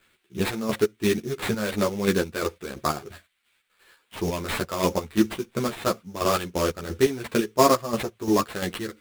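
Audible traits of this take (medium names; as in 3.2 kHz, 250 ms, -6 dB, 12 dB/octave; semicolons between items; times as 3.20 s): aliases and images of a low sample rate 6 kHz, jitter 20%; chopped level 2.9 Hz, depth 60%, duty 45%; a shimmering, thickened sound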